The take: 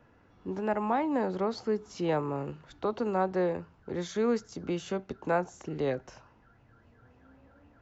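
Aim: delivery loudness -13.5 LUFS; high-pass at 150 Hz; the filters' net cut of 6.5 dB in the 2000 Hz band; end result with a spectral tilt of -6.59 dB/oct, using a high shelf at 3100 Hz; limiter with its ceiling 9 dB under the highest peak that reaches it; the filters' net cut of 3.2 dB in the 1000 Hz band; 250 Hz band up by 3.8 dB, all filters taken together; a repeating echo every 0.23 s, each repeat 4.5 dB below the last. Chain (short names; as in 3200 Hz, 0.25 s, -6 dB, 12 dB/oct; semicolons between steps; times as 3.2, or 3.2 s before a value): HPF 150 Hz; bell 250 Hz +6 dB; bell 1000 Hz -3 dB; bell 2000 Hz -5.5 dB; high shelf 3100 Hz -7.5 dB; limiter -25.5 dBFS; feedback echo 0.23 s, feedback 60%, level -4.5 dB; gain +20 dB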